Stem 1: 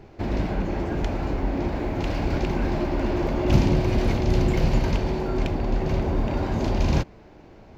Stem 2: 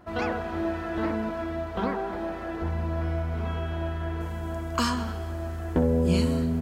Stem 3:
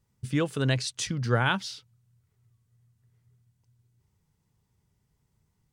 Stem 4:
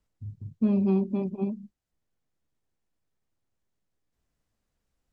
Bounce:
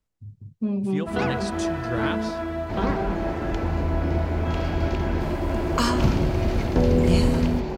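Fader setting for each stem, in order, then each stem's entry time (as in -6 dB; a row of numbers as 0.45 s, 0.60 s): -2.5 dB, +2.5 dB, -5.5 dB, -2.0 dB; 2.50 s, 1.00 s, 0.60 s, 0.00 s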